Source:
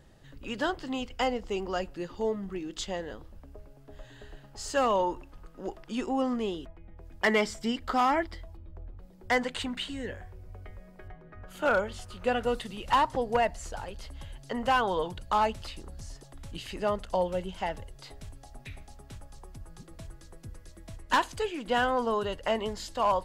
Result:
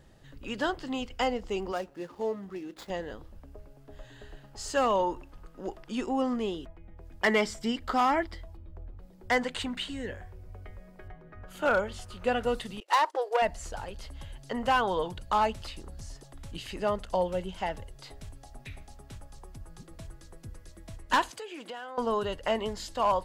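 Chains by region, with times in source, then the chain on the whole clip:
1.72–2.9 median filter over 15 samples + HPF 290 Hz 6 dB/oct
12.8–13.42 self-modulated delay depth 0.069 ms + gate -39 dBFS, range -25 dB + brick-wall FIR high-pass 310 Hz
21.3–21.98 HPF 340 Hz + compressor 8:1, threshold -37 dBFS
whole clip: dry

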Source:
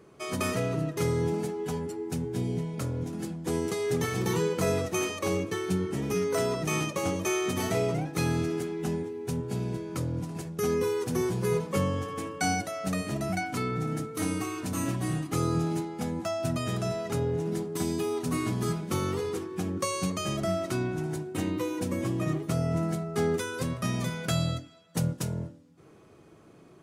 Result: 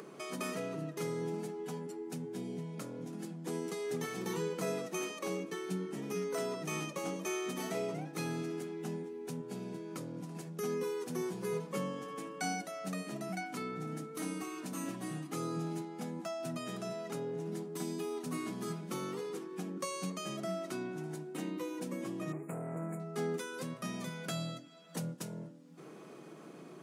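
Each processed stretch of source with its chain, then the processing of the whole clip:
22.32–23 brick-wall FIR band-stop 2600–6700 Hz + core saturation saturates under 400 Hz
whole clip: steep high-pass 150 Hz 48 dB/oct; upward compressor, threshold -30 dBFS; gain -8.5 dB

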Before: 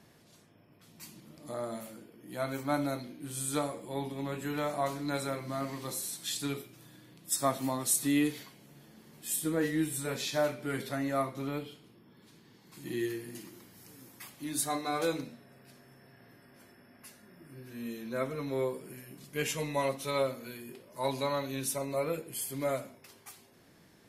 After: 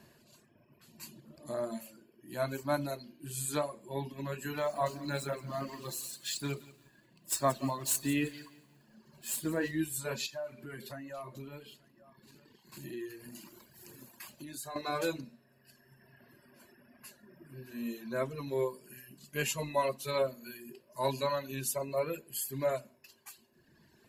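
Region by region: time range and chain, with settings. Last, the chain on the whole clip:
4.58–9.71 median filter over 3 samples + lo-fi delay 0.174 s, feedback 35%, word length 9-bit, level -9 dB
10.26–14.76 sample leveller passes 1 + compressor 3:1, threshold -43 dBFS + echo 0.882 s -17.5 dB
whole clip: reverb removal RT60 1.7 s; ripple EQ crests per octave 1.4, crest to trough 7 dB

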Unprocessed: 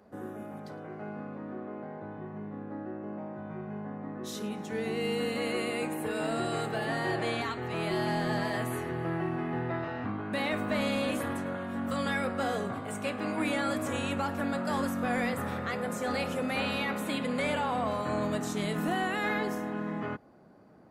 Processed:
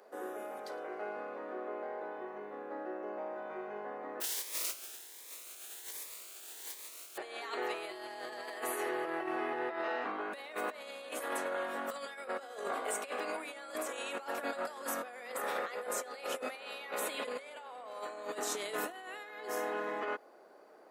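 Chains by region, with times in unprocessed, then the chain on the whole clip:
4.2–7.16 spectral contrast lowered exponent 0.12 + frequency shift -460 Hz + cascading phaser rising 1.3 Hz
whole clip: Chebyshev high-pass 420 Hz, order 3; high shelf 5400 Hz +4 dB; negative-ratio compressor -38 dBFS, ratio -0.5; gain -1 dB

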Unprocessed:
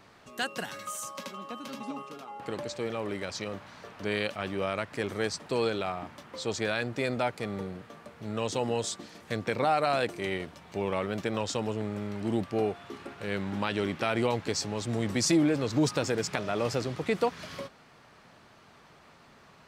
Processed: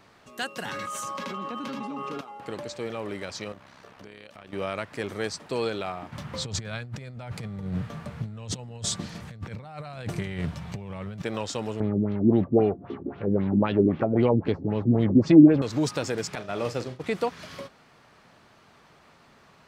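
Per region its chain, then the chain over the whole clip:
0.65–2.21 LPF 2400 Hz 6 dB/oct + bell 640 Hz -8.5 dB 0.25 oct + fast leveller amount 100%
3.52–4.53 AM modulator 67 Hz, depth 50% + compressor 10:1, threshold -41 dBFS
6.12–11.22 resonant low shelf 210 Hz +11.5 dB, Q 1.5 + negative-ratio compressor -32 dBFS, ratio -0.5 + Doppler distortion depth 0.14 ms
11.8–15.62 tilt shelf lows +9 dB, about 910 Hz + LFO low-pass sine 3.8 Hz 250–3700 Hz
16.35–17.04 expander -30 dBFS + flutter echo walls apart 6.9 m, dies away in 0.2 s
whole clip: dry

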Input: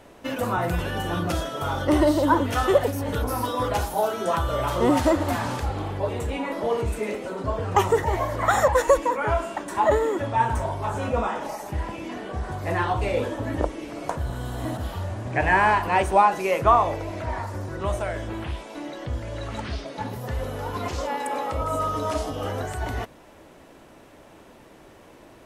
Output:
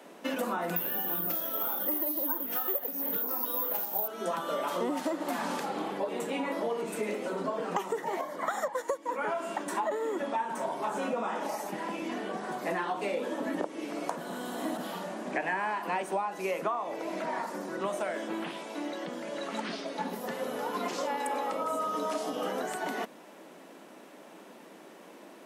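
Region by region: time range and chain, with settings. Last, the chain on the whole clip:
0.76–4.08 doubler 26 ms -13.5 dB + careless resampling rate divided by 3×, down filtered, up zero stuff
8.21–9.09 notch 2600 Hz, Q 7.8 + upward expander, over -28 dBFS
whole clip: steep high-pass 170 Hz 72 dB/oct; high shelf 12000 Hz +3 dB; compressor 12:1, threshold -27 dBFS; gain -1 dB

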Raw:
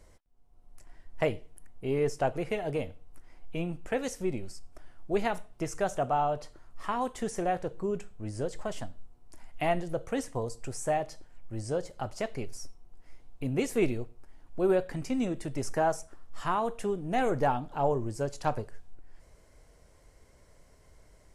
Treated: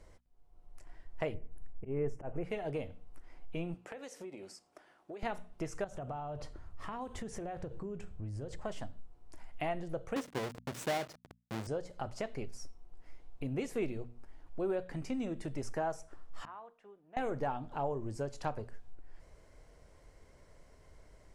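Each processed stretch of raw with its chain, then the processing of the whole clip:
1.34–2.44 auto swell 0.169 s + Butterworth band-stop 4000 Hz, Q 1.2 + tilt -2 dB/oct
3.74–5.23 HPF 310 Hz + compressor 16:1, threshold -41 dBFS
5.84–8.65 bell 68 Hz +13.5 dB 2.5 oct + compressor 10:1, threshold -35 dBFS
10.16–11.67 half-waves squared off + HPF 130 Hz
16.45–17.17 LPF 1200 Hz + differentiator
whole clip: high shelf 7200 Hz -10 dB; notches 60/120/180/240 Hz; compressor 2:1, threshold -38 dBFS

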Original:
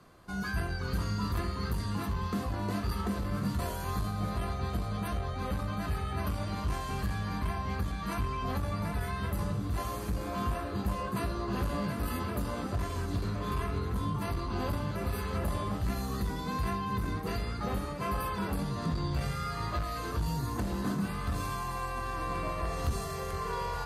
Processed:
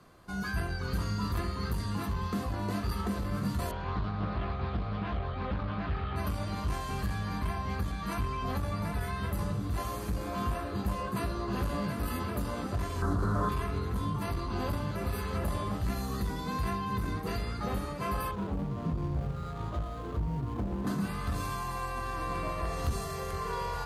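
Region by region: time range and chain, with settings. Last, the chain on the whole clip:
3.71–6.16 LPF 3700 Hz 24 dB/oct + Doppler distortion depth 0.28 ms
13.02–13.49 delta modulation 64 kbps, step -41.5 dBFS + resonant high shelf 1800 Hz -9.5 dB, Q 3 + fast leveller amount 100%
18.31–20.87 median filter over 25 samples + high shelf 2300 Hz -8 dB
whole clip: dry

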